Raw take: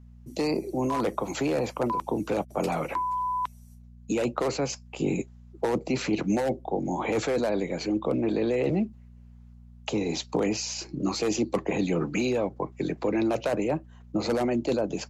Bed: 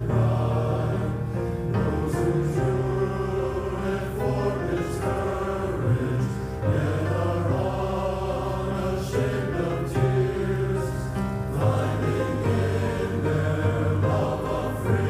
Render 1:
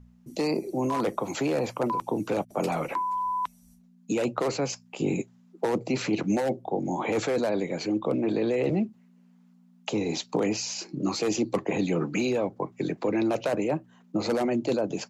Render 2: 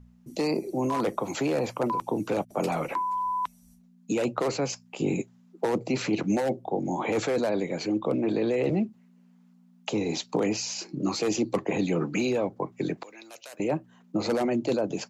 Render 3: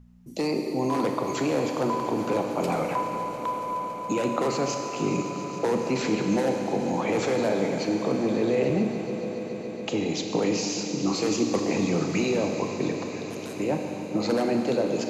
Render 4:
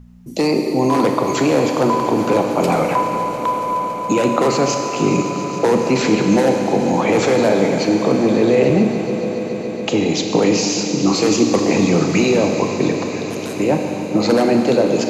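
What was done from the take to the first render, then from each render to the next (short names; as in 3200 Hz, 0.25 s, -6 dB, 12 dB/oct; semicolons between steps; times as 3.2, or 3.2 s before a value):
de-hum 60 Hz, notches 2
13.03–13.6 differentiator
on a send: swelling echo 0.14 s, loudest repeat 5, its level -18 dB; on the sum: Schroeder reverb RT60 2.8 s, combs from 30 ms, DRR 3.5 dB
gain +10 dB; limiter -2 dBFS, peak gain reduction 1 dB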